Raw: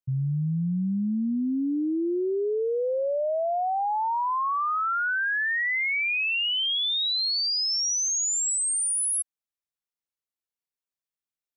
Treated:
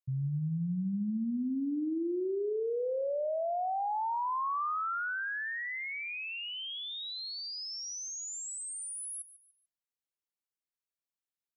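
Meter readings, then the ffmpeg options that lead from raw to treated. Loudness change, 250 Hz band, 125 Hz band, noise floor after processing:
−9.5 dB, −6.5 dB, can't be measured, below −85 dBFS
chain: -filter_complex "[0:a]acrossover=split=1300[link_01][link_02];[link_02]alimiter=level_in=7dB:limit=-24dB:level=0:latency=1,volume=-7dB[link_03];[link_01][link_03]amix=inputs=2:normalize=0,aecho=1:1:146|292|438:0.168|0.0554|0.0183,volume=-6.5dB"

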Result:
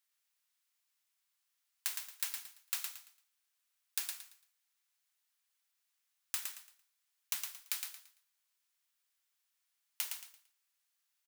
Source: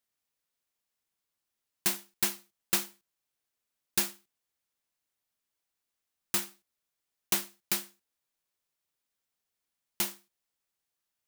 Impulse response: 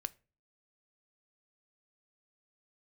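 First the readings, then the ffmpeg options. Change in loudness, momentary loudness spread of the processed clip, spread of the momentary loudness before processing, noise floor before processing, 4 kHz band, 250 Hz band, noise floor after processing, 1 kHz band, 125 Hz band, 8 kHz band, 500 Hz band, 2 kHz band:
−8.5 dB, 13 LU, 9 LU, below −85 dBFS, −7.5 dB, below −30 dB, −83 dBFS, −12.5 dB, below −35 dB, −7.5 dB, below −20 dB, −8.5 dB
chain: -af "highpass=1200,acompressor=threshold=-39dB:ratio=4,aecho=1:1:113|226|339|452:0.531|0.149|0.0416|0.0117,volume=2.5dB"

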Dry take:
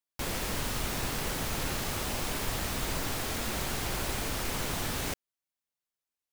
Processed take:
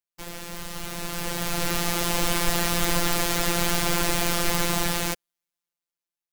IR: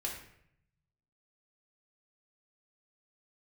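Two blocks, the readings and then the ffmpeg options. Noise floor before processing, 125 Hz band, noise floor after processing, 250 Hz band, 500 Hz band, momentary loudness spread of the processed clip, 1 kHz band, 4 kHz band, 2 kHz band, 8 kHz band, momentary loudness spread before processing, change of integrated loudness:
below −85 dBFS, +5.0 dB, below −85 dBFS, +8.0 dB, +7.5 dB, 12 LU, +8.0 dB, +7.5 dB, +7.5 dB, +8.0 dB, 1 LU, +8.0 dB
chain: -af "dynaudnorm=framelen=320:gausssize=9:maxgain=14dB,afftfilt=real='hypot(re,im)*cos(PI*b)':imag='0':win_size=1024:overlap=0.75,volume=-1dB"

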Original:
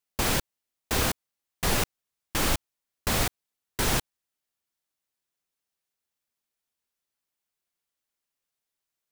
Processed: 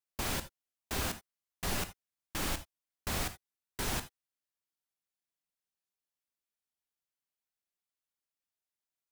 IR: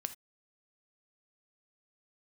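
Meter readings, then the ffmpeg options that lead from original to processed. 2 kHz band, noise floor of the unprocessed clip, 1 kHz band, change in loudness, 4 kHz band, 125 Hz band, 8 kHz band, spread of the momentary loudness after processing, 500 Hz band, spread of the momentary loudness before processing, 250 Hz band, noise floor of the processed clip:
−9.0 dB, below −85 dBFS, −9.0 dB, −9.0 dB, −9.0 dB, −9.0 dB, −9.0 dB, 11 LU, −10.0 dB, 7 LU, −9.0 dB, below −85 dBFS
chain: -filter_complex "[0:a]bandreject=frequency=480:width=12[link_01];[1:a]atrim=start_sample=2205,asetrate=43659,aresample=44100[link_02];[link_01][link_02]afir=irnorm=-1:irlink=0,volume=-8dB"

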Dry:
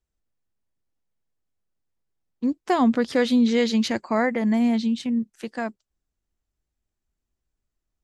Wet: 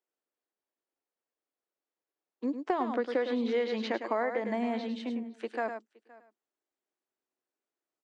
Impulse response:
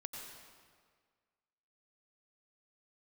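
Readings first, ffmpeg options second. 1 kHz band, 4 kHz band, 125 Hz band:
−6.0 dB, −11.5 dB, can't be measured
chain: -filter_complex "[0:a]highpass=frequency=320:width=0.5412,highpass=frequency=320:width=1.3066,asplit=2[link_01][link_02];[link_02]aecho=0:1:104:0.355[link_03];[link_01][link_03]amix=inputs=2:normalize=0,acrossover=split=4300[link_04][link_05];[link_05]acompressor=threshold=-55dB:ratio=4:attack=1:release=60[link_06];[link_04][link_06]amix=inputs=2:normalize=0,highshelf=frequency=2900:gain=-11,asplit=2[link_07][link_08];[link_08]aecho=0:1:518:0.0631[link_09];[link_07][link_09]amix=inputs=2:normalize=0,aresample=22050,aresample=44100,acompressor=threshold=-26dB:ratio=6"

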